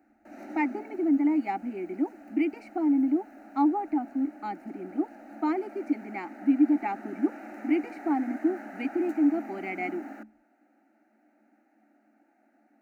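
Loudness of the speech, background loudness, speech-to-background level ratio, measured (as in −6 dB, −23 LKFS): −29.0 LKFS, −45.0 LKFS, 16.0 dB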